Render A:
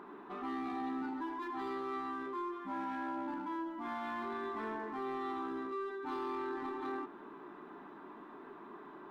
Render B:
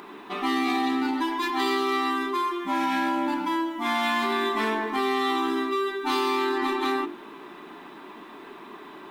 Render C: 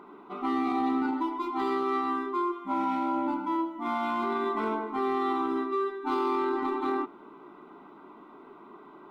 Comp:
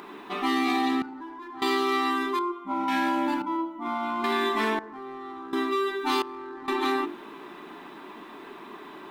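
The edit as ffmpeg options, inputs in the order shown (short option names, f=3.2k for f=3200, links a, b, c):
-filter_complex "[0:a]asplit=3[a][b][c];[2:a]asplit=2[d][e];[1:a]asplit=6[f][g][h][i][j][k];[f]atrim=end=1.022[l];[a]atrim=start=1.018:end=1.622[m];[g]atrim=start=1.618:end=2.392[n];[d]atrim=start=2.388:end=2.882[o];[h]atrim=start=2.878:end=3.422[p];[e]atrim=start=3.418:end=4.242[q];[i]atrim=start=4.238:end=4.792[r];[b]atrim=start=4.788:end=5.532[s];[j]atrim=start=5.528:end=6.222[t];[c]atrim=start=6.218:end=6.682[u];[k]atrim=start=6.678[v];[l][m]acrossfade=d=0.004:c1=hsin:c2=hsin[w];[w][n]acrossfade=d=0.004:c1=hsin:c2=hsin[x];[x][o]acrossfade=d=0.004:c1=hsin:c2=hsin[y];[y][p]acrossfade=d=0.004:c1=hsin:c2=hsin[z];[z][q]acrossfade=d=0.004:c1=hsin:c2=hsin[aa];[aa][r]acrossfade=d=0.004:c1=hsin:c2=hsin[ab];[ab][s]acrossfade=d=0.004:c1=hsin:c2=hsin[ac];[ac][t]acrossfade=d=0.004:c1=hsin:c2=hsin[ad];[ad][u]acrossfade=d=0.004:c1=hsin:c2=hsin[ae];[ae][v]acrossfade=d=0.004:c1=hsin:c2=hsin"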